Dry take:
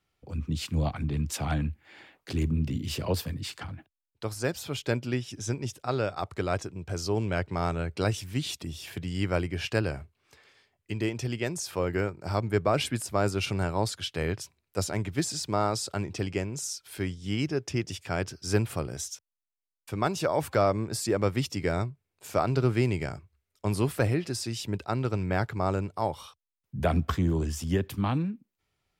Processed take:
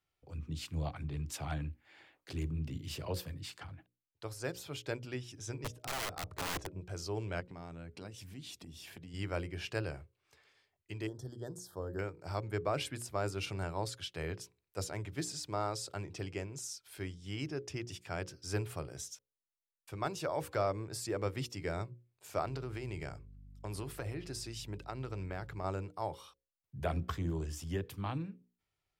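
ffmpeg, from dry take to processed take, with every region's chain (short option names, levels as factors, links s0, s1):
-filter_complex "[0:a]asettb=1/sr,asplit=3[s0][s1][s2];[s0]atrim=end=5.644[s3];[s1]atrim=start=5.64:end=6.81,asetpts=PTS-STARTPTS,afade=t=in:d=0.004:c=qsin,afade=t=out:st=1.166:d=0.004:c=qsin,tiltshelf=f=1400:g=5.5,aeval=exprs='(mod(14.1*val(0)+1,2)-1)/14.1':c=same,aeval=exprs='val(0)+0.00112*sin(2*PI*620*n/s)':c=same[s4];[s2]atrim=start=6.806[s5];[s3][s4]acrossfade=d=0.004:c1=hsin:c2=qsin[s6];[s6][s5]acrossfade=d=0.004:c1=qsin:c2=hsin,asettb=1/sr,asplit=3[s7][s8][s9];[s7]atrim=end=7.404[s10];[s8]atrim=start=7.4:end=9.14,asetpts=PTS-STARTPTS,afade=t=in:d=0.004:c=qsin,afade=t=out:st=1.736:d=0.004:c=qsin,equalizer=f=220:t=o:w=0.59:g=14,bandreject=f=1300:w=21,acompressor=threshold=0.0158:ratio=3:attack=3.2:release=140:knee=1:detection=peak[s11];[s9]atrim=start=9.136[s12];[s10][s11]acrossfade=d=0.004:c1=hsin:c2=qsin[s13];[s13][s12]acrossfade=d=0.004:c1=qsin:c2=hsin,asettb=1/sr,asplit=3[s14][s15][s16];[s14]atrim=end=11.074[s17];[s15]atrim=start=11.07:end=11.99,asetpts=PTS-STARTPTS,afade=t=in:d=0.004:c=qsin,afade=t=out:st=0.916:d=0.004:c=qsin,asuperstop=centerf=2400:order=12:qfactor=1.7,equalizer=f=2900:w=0.33:g=-10[s18];[s16]atrim=start=11.986[s19];[s17][s18]acrossfade=d=0.004:c1=hsin:c2=qsin[s20];[s20][s19]acrossfade=d=0.004:c1=qsin:c2=hsin,asettb=1/sr,asplit=3[s21][s22][s23];[s21]atrim=end=22.454[s24];[s22]atrim=start=22.45:end=25.64,asetpts=PTS-STARTPTS,afade=t=in:d=0.004:c=qsin,afade=t=out:st=3.186:d=0.004:c=qsin,acompressor=threshold=0.0562:ratio=10:attack=3.2:release=140:knee=1:detection=peak,aeval=exprs='val(0)+0.00708*(sin(2*PI*50*n/s)+sin(2*PI*2*50*n/s)/2+sin(2*PI*3*50*n/s)/3+sin(2*PI*4*50*n/s)/4+sin(2*PI*5*50*n/s)/5)':c=same[s25];[s23]atrim=start=25.636[s26];[s24][s25]acrossfade=d=0.004:c1=hsin:c2=qsin[s27];[s27][s26]acrossfade=d=0.004:c1=qsin:c2=hsin,equalizer=f=220:w=5:g=-10.5,bandreject=f=60:t=h:w=6,bandreject=f=120:t=h:w=6,bandreject=f=180:t=h:w=6,bandreject=f=240:t=h:w=6,bandreject=f=300:t=h:w=6,bandreject=f=360:t=h:w=6,bandreject=f=420:t=h:w=6,bandreject=f=480:t=h:w=6,bandreject=f=540:t=h:w=6,volume=0.376"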